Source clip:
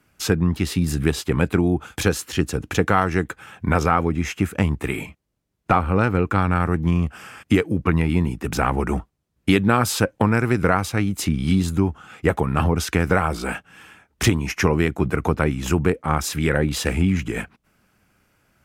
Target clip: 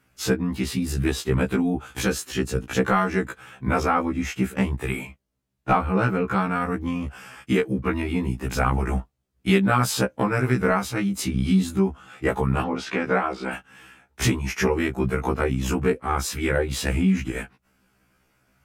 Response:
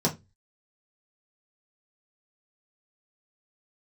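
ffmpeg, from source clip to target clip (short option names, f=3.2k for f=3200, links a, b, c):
-filter_complex "[0:a]asettb=1/sr,asplit=3[a][b][c];[a]atrim=end=12.624[d];[b]atrim=start=12.62:end=13.53,asetpts=PTS-STARTPTS,afade=t=in:d=0.004:c=qsin,afade=t=out:st=0.906:d=0.004:c=qsin,highpass=200,lowpass=4.1k[e];[c]atrim=start=13.526[f];[d][e]acrossfade=d=0.004:c1=hsin:c2=qsin[g];[g][f]acrossfade=d=0.004:c1=qsin:c2=hsin,afftfilt=real='re*1.73*eq(mod(b,3),0)':imag='im*1.73*eq(mod(b,3),0)':win_size=2048:overlap=0.75"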